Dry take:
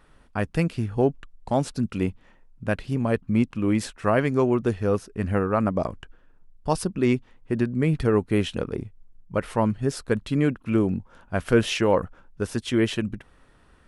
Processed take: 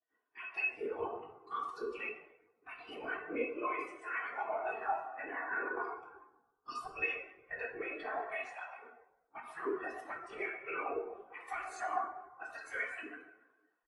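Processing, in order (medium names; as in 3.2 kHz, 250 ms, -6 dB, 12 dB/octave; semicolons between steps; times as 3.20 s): spectral gate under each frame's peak -20 dB weak; high-pass 56 Hz 12 dB/octave; comb 2.7 ms, depth 68%; compression 4:1, threshold -43 dBFS, peak gain reduction 12.5 dB; whisper effect; saturation -37.5 dBFS, distortion -18 dB; plate-style reverb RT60 2.4 s, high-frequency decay 0.55×, DRR -3.5 dB; spectral contrast expander 2.5:1; trim +8 dB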